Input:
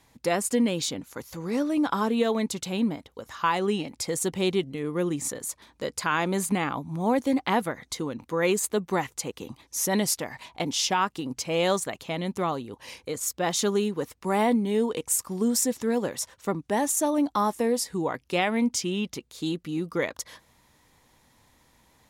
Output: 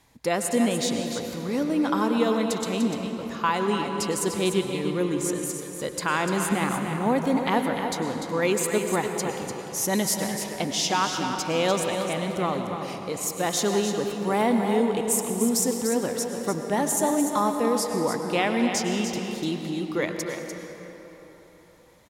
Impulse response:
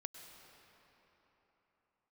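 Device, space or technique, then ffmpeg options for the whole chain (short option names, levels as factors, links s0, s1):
cave: -filter_complex "[0:a]aecho=1:1:296:0.398[s0];[1:a]atrim=start_sample=2205[s1];[s0][s1]afir=irnorm=-1:irlink=0,volume=1.78"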